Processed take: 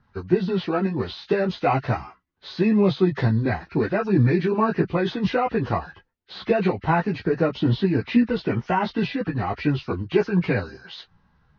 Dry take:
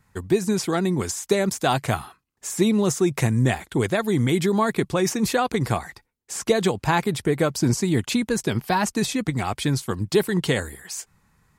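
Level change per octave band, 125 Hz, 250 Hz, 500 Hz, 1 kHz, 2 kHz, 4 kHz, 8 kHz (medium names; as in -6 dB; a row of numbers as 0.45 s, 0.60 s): +0.5 dB, +0.5 dB, 0.0 dB, 0.0 dB, -1.5 dB, -5.5 dB, under -25 dB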